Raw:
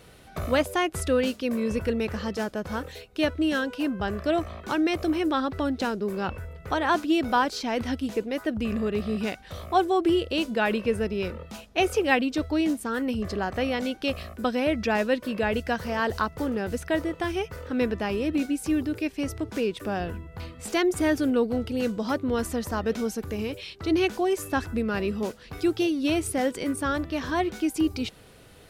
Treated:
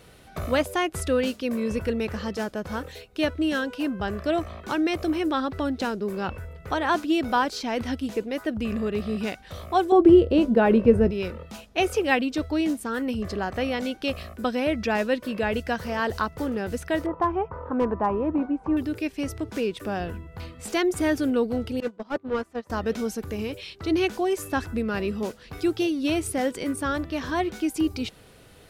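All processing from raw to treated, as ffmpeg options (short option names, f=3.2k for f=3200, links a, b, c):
-filter_complex "[0:a]asettb=1/sr,asplit=3[a][b][c];[a]atrim=end=9.924[d];[b]atrim=start=9.92:end=11.11,asetpts=PTS-STARTPTS,afade=t=in:d=0.004:c=qsin,afade=t=out:st=1.186:d=0.004:c=qsin,tiltshelf=f=1.3k:g=10,asplit=2[e][f];[f]adelay=17,volume=-13dB[g];[e][g]amix=inputs=2:normalize=0,atrim=end_sample=52479[h];[c]atrim=start=11.106[i];[d][h]acrossfade=d=0.004:c1=hsin:c2=qsin[j];[j][i]acrossfade=d=0.004:c1=qsin:c2=hsin,asettb=1/sr,asplit=3[k][l][m];[k]atrim=end=17.064[n];[l]atrim=start=17.06:end=18.77,asetpts=PTS-STARTPTS,afade=t=in:d=0.004:c=qsin,afade=t=out:st=1.706:d=0.004:c=qsin,lowpass=f=1k:t=q:w=5.1,asoftclip=type=hard:threshold=-15dB[o];[m]atrim=start=18.766[p];[n][o]acrossfade=d=0.004:c1=hsin:c2=qsin[q];[q][p]acrossfade=d=0.004:c1=qsin:c2=hsin,asettb=1/sr,asplit=3[r][s][t];[r]atrim=end=21.804[u];[s]atrim=start=21.8:end=22.7,asetpts=PTS-STARTPTS,afade=t=in:d=0.004:c=qsin,afade=t=out:st=0.896:d=0.004:c=qsin,asplit=2[v][w];[w]highpass=f=720:p=1,volume=19dB,asoftclip=type=tanh:threshold=-14.5dB[x];[v][x]amix=inputs=2:normalize=0,lowpass=f=1.2k:p=1,volume=-6dB,agate=range=-25dB:threshold=-23dB:ratio=16:release=100:detection=peak[y];[t]atrim=start=22.696[z];[u][y]acrossfade=d=0.004:c1=hsin:c2=qsin[aa];[aa][z]acrossfade=d=0.004:c1=qsin:c2=hsin"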